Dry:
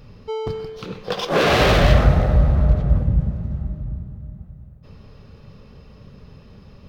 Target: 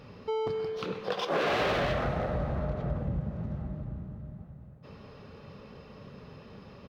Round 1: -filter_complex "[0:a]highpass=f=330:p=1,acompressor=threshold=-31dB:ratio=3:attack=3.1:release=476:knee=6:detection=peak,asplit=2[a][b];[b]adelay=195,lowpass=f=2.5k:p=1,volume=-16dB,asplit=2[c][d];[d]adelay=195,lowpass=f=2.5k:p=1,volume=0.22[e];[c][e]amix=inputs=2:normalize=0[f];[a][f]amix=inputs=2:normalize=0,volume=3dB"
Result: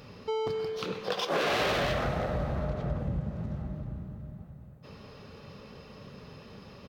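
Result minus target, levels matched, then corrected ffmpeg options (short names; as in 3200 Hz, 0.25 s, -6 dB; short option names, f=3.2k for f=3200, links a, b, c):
8000 Hz band +6.5 dB
-filter_complex "[0:a]highpass=f=330:p=1,highshelf=f=4.4k:g=-11,acompressor=threshold=-31dB:ratio=3:attack=3.1:release=476:knee=6:detection=peak,asplit=2[a][b];[b]adelay=195,lowpass=f=2.5k:p=1,volume=-16dB,asplit=2[c][d];[d]adelay=195,lowpass=f=2.5k:p=1,volume=0.22[e];[c][e]amix=inputs=2:normalize=0[f];[a][f]amix=inputs=2:normalize=0,volume=3dB"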